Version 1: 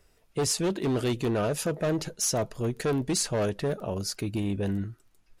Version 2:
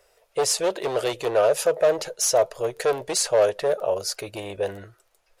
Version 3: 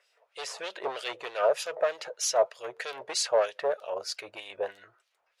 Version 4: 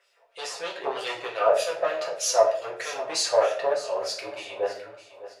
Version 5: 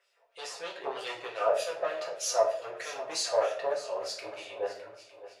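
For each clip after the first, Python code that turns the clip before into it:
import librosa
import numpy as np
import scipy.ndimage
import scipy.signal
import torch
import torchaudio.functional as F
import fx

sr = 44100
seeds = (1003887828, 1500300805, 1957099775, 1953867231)

y1 = fx.low_shelf_res(x, sr, hz=360.0, db=-13.5, q=3.0)
y1 = y1 * 10.0 ** (4.5 / 20.0)
y2 = fx.filter_lfo_bandpass(y1, sr, shape='sine', hz=3.2, low_hz=850.0, high_hz=3900.0, q=1.3)
y3 = fx.echo_feedback(y2, sr, ms=608, feedback_pct=38, wet_db=-15.0)
y3 = fx.room_shoebox(y3, sr, seeds[0], volume_m3=54.0, walls='mixed', distance_m=0.82)
y4 = y3 + 10.0 ** (-18.5 / 20.0) * np.pad(y3, (int(905 * sr / 1000.0), 0))[:len(y3)]
y4 = y4 * 10.0 ** (-6.0 / 20.0)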